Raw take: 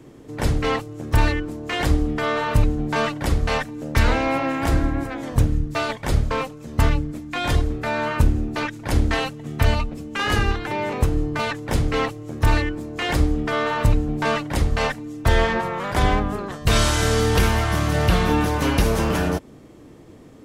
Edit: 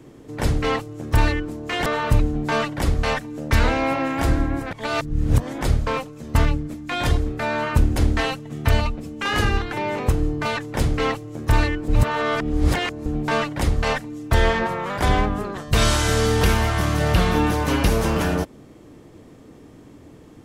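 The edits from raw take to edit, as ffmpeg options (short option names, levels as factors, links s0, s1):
-filter_complex "[0:a]asplit=7[s0][s1][s2][s3][s4][s5][s6];[s0]atrim=end=1.862[s7];[s1]atrim=start=2.298:end=5.152[s8];[s2]atrim=start=5.148:end=6.052,asetpts=PTS-STARTPTS,areverse[s9];[s3]atrim=start=6.048:end=8.402[s10];[s4]atrim=start=8.898:end=12.822[s11];[s5]atrim=start=12.818:end=14.002,asetpts=PTS-STARTPTS,areverse[s12];[s6]atrim=start=13.998[s13];[s7][s8]acrossfade=d=0.004:c1=hsin:c2=hsin[s14];[s14][s9]acrossfade=d=0.004:c1=hsin:c2=hsin[s15];[s15][s10]acrossfade=d=0.004:c1=hsin:c2=hsin[s16];[s16][s11]acrossfade=d=0.004:c1=hsin:c2=hsin[s17];[s17][s12]acrossfade=d=0.004:c1=hsin:c2=hsin[s18];[s18][s13]acrossfade=d=0.004:c1=hsin:c2=hsin"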